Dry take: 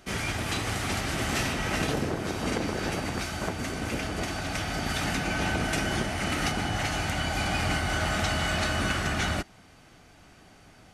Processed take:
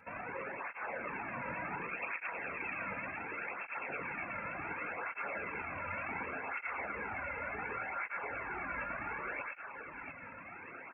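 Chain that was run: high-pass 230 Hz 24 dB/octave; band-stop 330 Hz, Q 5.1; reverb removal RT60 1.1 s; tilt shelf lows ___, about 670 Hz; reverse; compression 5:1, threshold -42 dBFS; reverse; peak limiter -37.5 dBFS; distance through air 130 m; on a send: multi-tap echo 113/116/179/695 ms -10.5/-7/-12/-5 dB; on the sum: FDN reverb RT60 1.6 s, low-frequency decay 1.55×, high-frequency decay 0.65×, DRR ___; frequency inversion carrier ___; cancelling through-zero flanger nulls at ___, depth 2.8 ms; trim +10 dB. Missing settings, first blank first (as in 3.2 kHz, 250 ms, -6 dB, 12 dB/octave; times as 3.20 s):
-7.5 dB, 14.5 dB, 2.9 kHz, 0.68 Hz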